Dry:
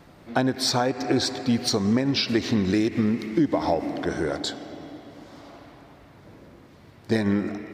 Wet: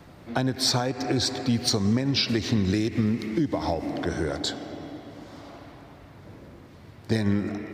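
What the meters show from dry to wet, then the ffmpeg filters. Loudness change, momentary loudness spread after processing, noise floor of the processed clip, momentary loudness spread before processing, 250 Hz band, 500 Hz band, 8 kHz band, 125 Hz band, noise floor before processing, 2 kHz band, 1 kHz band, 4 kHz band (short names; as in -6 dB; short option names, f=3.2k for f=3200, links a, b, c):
-1.5 dB, 18 LU, -48 dBFS, 9 LU, -2.5 dB, -3.5 dB, +1.0 dB, +2.5 dB, -51 dBFS, -2.5 dB, -3.5 dB, +0.5 dB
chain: -filter_complex "[0:a]acrossover=split=150|3000[a][b][c];[b]acompressor=threshold=-29dB:ratio=2[d];[a][d][c]amix=inputs=3:normalize=0,equalizer=f=86:w=0.96:g=4.5,volume=1dB"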